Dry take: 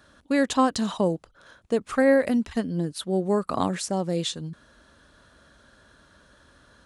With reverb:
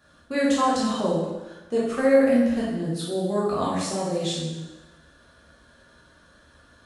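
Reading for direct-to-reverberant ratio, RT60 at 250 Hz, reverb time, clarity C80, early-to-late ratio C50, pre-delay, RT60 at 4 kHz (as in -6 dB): -7.5 dB, 1.1 s, 1.1 s, 3.0 dB, 0.0 dB, 6 ms, 1.0 s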